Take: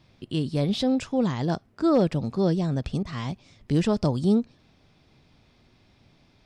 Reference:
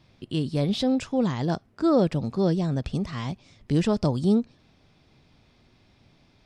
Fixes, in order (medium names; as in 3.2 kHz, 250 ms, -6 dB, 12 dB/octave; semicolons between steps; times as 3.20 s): clip repair -12 dBFS; interpolate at 3.03 s, 23 ms